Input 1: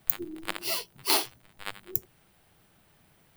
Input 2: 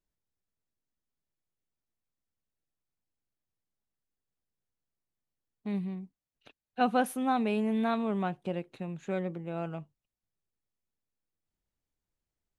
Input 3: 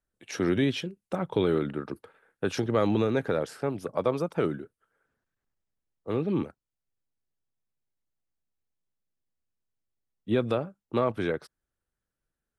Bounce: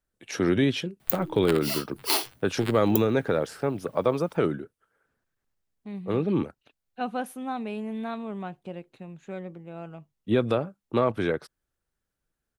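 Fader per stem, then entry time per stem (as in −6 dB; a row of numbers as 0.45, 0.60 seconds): −0.5, −4.0, +2.5 decibels; 1.00, 0.20, 0.00 seconds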